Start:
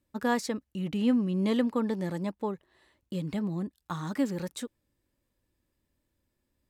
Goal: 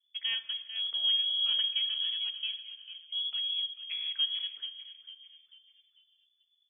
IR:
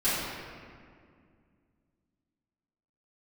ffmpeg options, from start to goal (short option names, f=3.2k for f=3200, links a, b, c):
-filter_complex "[0:a]aemphasis=mode=reproduction:type=bsi,asplit=5[a][b][c][d][e];[b]adelay=444,afreqshift=45,volume=-11.5dB[f];[c]adelay=888,afreqshift=90,volume=-19.5dB[g];[d]adelay=1332,afreqshift=135,volume=-27.4dB[h];[e]adelay=1776,afreqshift=180,volume=-35.4dB[i];[a][f][g][h][i]amix=inputs=5:normalize=0,adynamicsmooth=sensitivity=5.5:basefreq=1.5k,lowpass=f=3k:t=q:w=0.5098,lowpass=f=3k:t=q:w=0.6013,lowpass=f=3k:t=q:w=0.9,lowpass=f=3k:t=q:w=2.563,afreqshift=-3500,asplit=2[j][k];[1:a]atrim=start_sample=2205,asetrate=74970,aresample=44100[l];[k][l]afir=irnorm=-1:irlink=0,volume=-18.5dB[m];[j][m]amix=inputs=2:normalize=0,volume=-8.5dB"